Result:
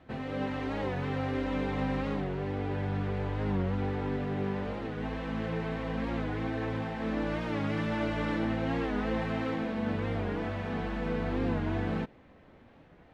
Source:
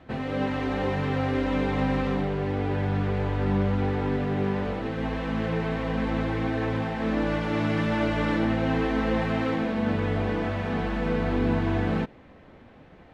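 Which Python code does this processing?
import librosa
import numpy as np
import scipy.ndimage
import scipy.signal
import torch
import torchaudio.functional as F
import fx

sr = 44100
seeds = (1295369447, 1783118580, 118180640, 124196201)

y = fx.record_warp(x, sr, rpm=45.0, depth_cents=100.0)
y = y * librosa.db_to_amplitude(-6.0)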